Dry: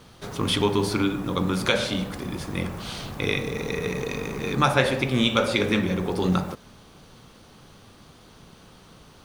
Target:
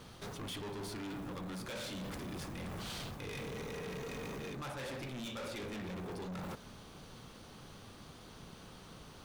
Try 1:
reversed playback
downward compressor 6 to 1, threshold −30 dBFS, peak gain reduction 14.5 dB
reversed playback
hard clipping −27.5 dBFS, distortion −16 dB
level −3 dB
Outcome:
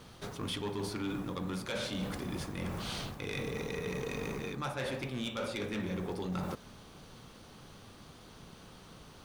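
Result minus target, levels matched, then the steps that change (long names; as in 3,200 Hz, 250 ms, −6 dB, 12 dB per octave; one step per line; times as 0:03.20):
hard clipping: distortion −10 dB
change: hard clipping −37.5 dBFS, distortion −6 dB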